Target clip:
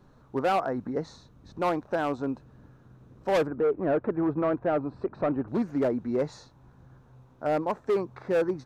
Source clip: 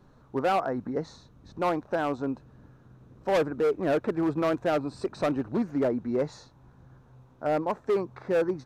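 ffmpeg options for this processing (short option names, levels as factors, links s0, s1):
-filter_complex "[0:a]asettb=1/sr,asplit=3[s0][s1][s2];[s0]atrim=end=3.474[s3];[s1]atrim=start=3.47:end=5.48,asetpts=PTS-STARTPTS,afade=t=in:d=0.004:c=qsin,afade=t=out:st=2.006:d=0.004:c=qsin,lowpass=1600[s4];[s2]atrim=start=5.476[s5];[s3][s4]acrossfade=d=0.004:c1=hsin:c2=qsin[s6];[s6][s5]acrossfade=d=0.004:c1=qsin:c2=hsin"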